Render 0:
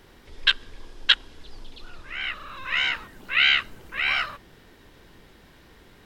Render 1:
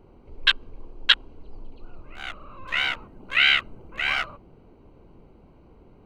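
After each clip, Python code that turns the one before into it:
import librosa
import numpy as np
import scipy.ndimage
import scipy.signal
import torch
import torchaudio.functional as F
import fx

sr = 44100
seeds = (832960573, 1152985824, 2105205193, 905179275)

y = fx.wiener(x, sr, points=25)
y = fx.peak_eq(y, sr, hz=5600.0, db=-2.5, octaves=1.6)
y = y * 10.0 ** (2.0 / 20.0)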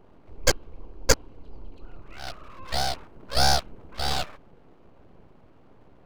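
y = np.abs(x)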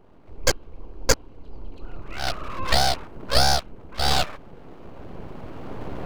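y = fx.recorder_agc(x, sr, target_db=-6.0, rise_db_per_s=8.8, max_gain_db=30)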